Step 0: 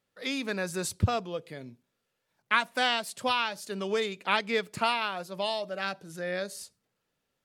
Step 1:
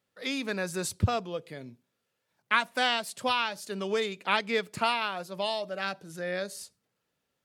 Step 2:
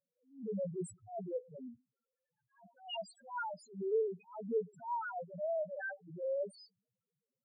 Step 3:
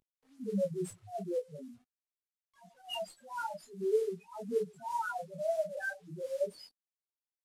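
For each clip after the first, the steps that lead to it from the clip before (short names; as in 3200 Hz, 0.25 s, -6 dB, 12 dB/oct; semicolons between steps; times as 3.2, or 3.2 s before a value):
HPF 48 Hz
soft clip -21 dBFS, distortion -11 dB; loudest bins only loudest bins 1; attack slew limiter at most 160 dB/s; gain +4 dB
CVSD 64 kbps; detuned doubles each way 15 cents; gain +7 dB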